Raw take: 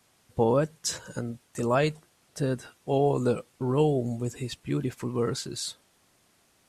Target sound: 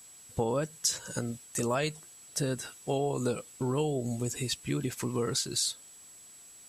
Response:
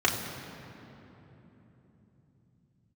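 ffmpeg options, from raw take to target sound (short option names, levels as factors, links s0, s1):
-af "highshelf=f=2900:g=11.5,acompressor=threshold=0.0398:ratio=3,aeval=exprs='val(0)+0.00282*sin(2*PI*7800*n/s)':c=same"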